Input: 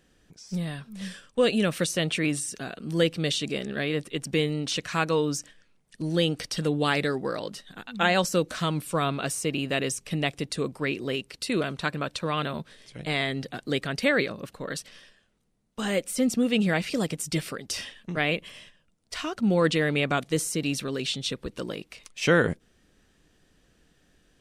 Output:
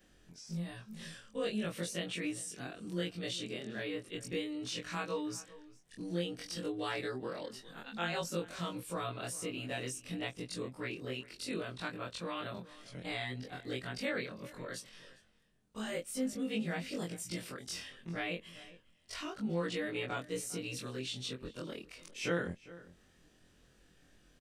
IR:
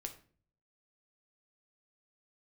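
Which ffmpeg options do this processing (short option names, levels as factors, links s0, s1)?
-filter_complex "[0:a]afftfilt=real='re':imag='-im':win_size=2048:overlap=0.75,acompressor=threshold=0.00158:ratio=1.5,asplit=2[s0][s1];[s1]adelay=402.3,volume=0.126,highshelf=f=4000:g=-9.05[s2];[s0][s2]amix=inputs=2:normalize=0,volume=1.33"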